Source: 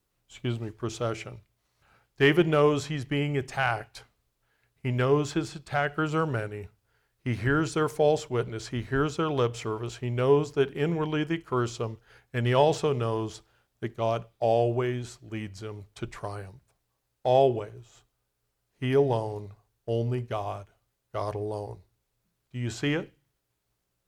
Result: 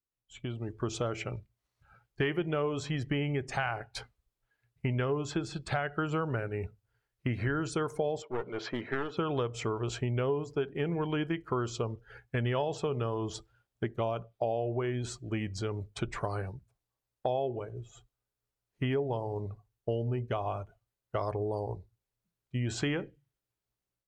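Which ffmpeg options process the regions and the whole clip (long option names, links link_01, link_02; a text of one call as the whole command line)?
ffmpeg -i in.wav -filter_complex "[0:a]asettb=1/sr,asplit=3[link_01][link_02][link_03];[link_01]atrim=end=8.224[link_04];[link_02]atrim=start=8.22:end=9.17,asetpts=PTS-STARTPTS,afade=type=in:duration=0.004:curve=qsin,afade=type=out:start_time=0.946:duration=0.004:curve=qsin,highpass=300,lowpass=3400,aeval=exprs='clip(val(0),-1,0.0106)':channel_layout=same[link_05];[link_03]atrim=start=9.166[link_06];[link_04][link_05]acrossfade=duration=0.004:curve1=hsin:curve2=qsin[link_07];[link_07][link_06]acrossfade=duration=0.004:curve1=qsin:curve2=hsin,acompressor=threshold=-35dB:ratio=6,afftdn=noise_reduction=17:noise_floor=-56,dynaudnorm=framelen=400:gausssize=3:maxgain=10dB,volume=-4dB" out.wav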